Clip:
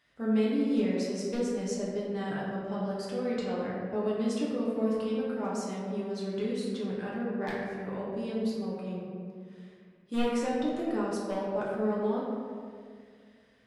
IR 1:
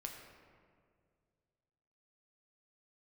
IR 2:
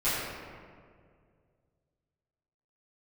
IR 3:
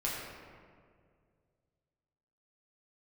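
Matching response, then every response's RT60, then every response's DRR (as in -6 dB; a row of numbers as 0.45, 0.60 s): 3; 2.1, 2.1, 2.1 s; 1.0, -16.5, -6.5 dB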